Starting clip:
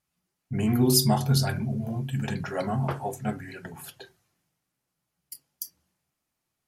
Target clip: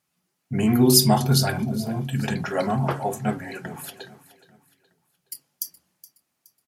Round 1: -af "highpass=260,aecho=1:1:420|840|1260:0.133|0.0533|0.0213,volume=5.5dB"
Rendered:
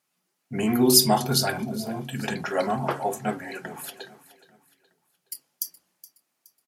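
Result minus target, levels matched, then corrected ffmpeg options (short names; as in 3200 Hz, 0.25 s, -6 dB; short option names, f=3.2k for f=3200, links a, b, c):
125 Hz band -6.5 dB
-af "highpass=130,aecho=1:1:420|840|1260:0.133|0.0533|0.0213,volume=5.5dB"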